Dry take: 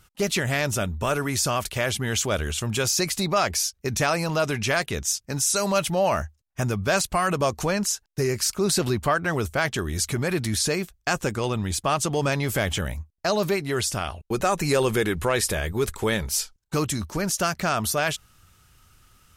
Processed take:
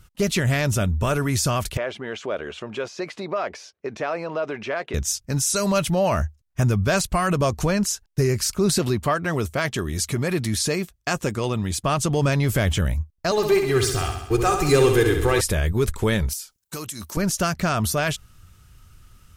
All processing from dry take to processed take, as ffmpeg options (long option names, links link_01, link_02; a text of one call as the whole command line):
ffmpeg -i in.wav -filter_complex "[0:a]asettb=1/sr,asplit=3[link_01][link_02][link_03];[link_01]atrim=end=1.774[link_04];[link_02]atrim=start=1.77:end=4.94,asetpts=PTS-STARTPTS,afade=type=in:duration=0.004:curve=qsin,afade=type=out:start_time=3.166:duration=0.004:curve=qsin,equalizer=frequency=520:width_type=o:width=1.7:gain=5.5,acompressor=threshold=-26dB:ratio=2:attack=3.2:release=140:knee=1:detection=peak,highpass=360,lowpass=2600[link_05];[link_03]atrim=start=4.936[link_06];[link_04][link_05]acrossfade=duration=0.004:curve1=hsin:curve2=qsin[link_07];[link_07][link_06]acrossfade=duration=0.004:curve1=qsin:curve2=hsin,asettb=1/sr,asplit=3[link_08][link_09][link_10];[link_08]atrim=end=8.784[link_11];[link_09]atrim=start=8.78:end=11.83,asetpts=PTS-STARTPTS,afade=type=in:duration=0.004:curve=qsin,afade=type=out:start_time=3.046:duration=0.004:curve=qsin,highpass=frequency=180:poles=1,bandreject=frequency=1500:width=16[link_12];[link_10]atrim=start=11.826[link_13];[link_11][link_12]acrossfade=duration=0.004:curve1=hsin:curve2=qsin[link_14];[link_14][link_13]acrossfade=duration=0.004:curve1=qsin:curve2=hsin,asettb=1/sr,asplit=3[link_15][link_16][link_17];[link_15]atrim=end=13.314[link_18];[link_16]atrim=start=13.31:end=15.41,asetpts=PTS-STARTPTS,afade=type=in:duration=0.004:curve=qsin,afade=type=out:start_time=2.096:duration=0.004:curve=qsin,aecho=1:1:2.5:0.77,atrim=end_sample=92610,aeval=exprs='sgn(val(0))*max(abs(val(0))-0.0133,0)':channel_layout=same,aecho=1:1:66|132|198|264|330|396|462|528:0.473|0.284|0.17|0.102|0.0613|0.0368|0.0221|0.0132,atrim=end_sample=92610[link_19];[link_17]atrim=start=15.406[link_20];[link_18][link_19]acrossfade=duration=0.004:curve1=hsin:curve2=qsin[link_21];[link_21][link_20]acrossfade=duration=0.004:curve1=qsin:curve2=hsin,asettb=1/sr,asplit=3[link_22][link_23][link_24];[link_22]atrim=end=16.334[link_25];[link_23]atrim=start=16.33:end=17.17,asetpts=PTS-STARTPTS,afade=type=in:duration=0.004:curve=qsin,afade=type=out:start_time=0.836:duration=0.004:curve=qsin,highpass=frequency=460:poles=1,aemphasis=mode=production:type=50kf,acompressor=threshold=-30dB:ratio=5:attack=3.2:release=140:knee=1:detection=peak[link_26];[link_24]atrim=start=17.166[link_27];[link_25][link_26]acrossfade=duration=0.004:curve1=hsin:curve2=qsin[link_28];[link_28][link_27]acrossfade=duration=0.004:curve1=qsin:curve2=hsin,lowshelf=frequency=200:gain=10,bandreject=frequency=810:width=14" out.wav